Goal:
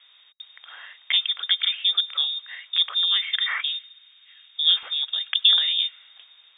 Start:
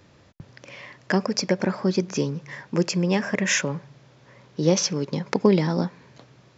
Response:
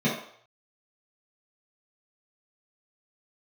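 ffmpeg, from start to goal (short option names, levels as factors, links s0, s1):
-af "lowpass=f=3200:t=q:w=0.5098,lowpass=f=3200:t=q:w=0.6013,lowpass=f=3200:t=q:w=0.9,lowpass=f=3200:t=q:w=2.563,afreqshift=-3800,asetnsamples=n=441:p=0,asendcmd='3.08 highpass f 1500;4.83 highpass f 650',highpass=680"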